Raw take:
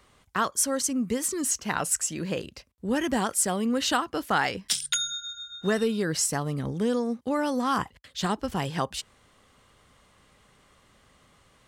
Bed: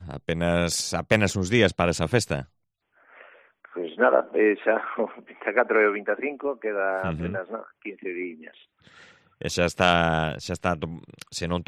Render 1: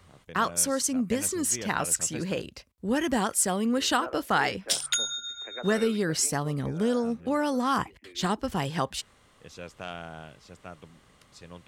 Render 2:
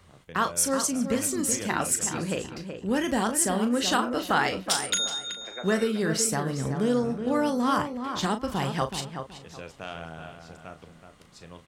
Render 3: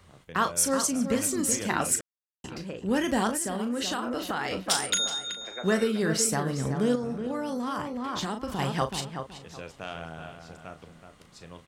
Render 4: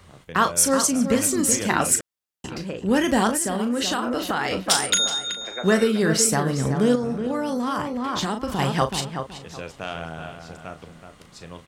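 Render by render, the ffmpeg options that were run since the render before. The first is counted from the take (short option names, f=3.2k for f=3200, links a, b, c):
-filter_complex "[1:a]volume=-19dB[a];[0:a][a]amix=inputs=2:normalize=0"
-filter_complex "[0:a]asplit=2[a][b];[b]adelay=37,volume=-9.5dB[c];[a][c]amix=inputs=2:normalize=0,asplit=2[d][e];[e]adelay=375,lowpass=f=2.4k:p=1,volume=-7.5dB,asplit=2[f][g];[g]adelay=375,lowpass=f=2.4k:p=1,volume=0.28,asplit=2[h][i];[i]adelay=375,lowpass=f=2.4k:p=1,volume=0.28[j];[f][h][j]amix=inputs=3:normalize=0[k];[d][k]amix=inputs=2:normalize=0"
-filter_complex "[0:a]asettb=1/sr,asplit=3[a][b][c];[a]atrim=end=3.354[d];[b]atrim=start=3.35:end=4.51,asetpts=PTS-STARTPTS,afade=t=in:d=0.004:c=qsin,afade=t=out:st=1.156:d=0.004:c=qsin,acompressor=threshold=-26dB:ratio=6:attack=3.2:release=140:knee=1:detection=peak[e];[c]atrim=start=4.506[f];[d][e]acrossfade=d=0.004:c1=hsin:c2=qsin[g];[g][f]acrossfade=d=0.004:c1=qsin:c2=hsin,asettb=1/sr,asplit=3[h][i][j];[h]atrim=end=6.954[k];[i]atrim=start=6.95:end=8.59,asetpts=PTS-STARTPTS,afade=t=in:d=0.004:c=qsin,afade=t=out:st=1.636:d=0.004:c=qsin,acompressor=threshold=-27dB:ratio=6:attack=3.2:release=140:knee=1:detection=peak[l];[j]atrim=start=8.586[m];[k][l]acrossfade=d=0.004:c1=hsin:c2=qsin[n];[n][m]acrossfade=d=0.004:c1=qsin:c2=hsin,asplit=3[o][p][q];[o]atrim=end=2.01,asetpts=PTS-STARTPTS,afade=t=out:st=2.006:d=0.004:c=hsin[r];[p]atrim=start=2.01:end=2.44,asetpts=PTS-STARTPTS,volume=0[s];[q]atrim=start=2.44,asetpts=PTS-STARTPTS,afade=t=in:d=0.004:c=hsin[t];[r][s][t]concat=n=3:v=0:a=1"
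-af "volume=6dB"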